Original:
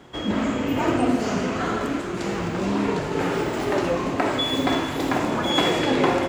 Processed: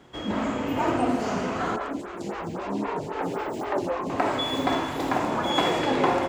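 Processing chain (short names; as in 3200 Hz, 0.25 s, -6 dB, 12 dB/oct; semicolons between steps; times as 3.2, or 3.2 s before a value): dynamic EQ 870 Hz, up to +6 dB, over -35 dBFS, Q 1.1; 1.76–4.1 photocell phaser 3.8 Hz; gain -5 dB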